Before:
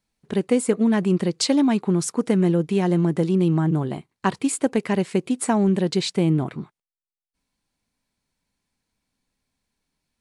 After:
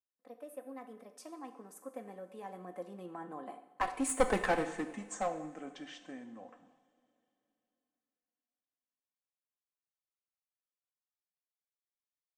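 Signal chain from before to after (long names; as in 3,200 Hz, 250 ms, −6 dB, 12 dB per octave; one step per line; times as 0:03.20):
gliding playback speed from 114% → 51%
source passing by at 0:04.36, 25 m/s, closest 3.9 metres
high-pass filter 420 Hz 12 dB per octave
parametric band 4,200 Hz −10 dB 1.5 octaves
comb filter 3.9 ms, depth 67%
hollow resonant body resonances 700/1,100/1,700 Hz, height 9 dB, ringing for 25 ms
asymmetric clip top −31.5 dBFS
coupled-rooms reverb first 0.7 s, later 3.3 s, from −18 dB, DRR 7.5 dB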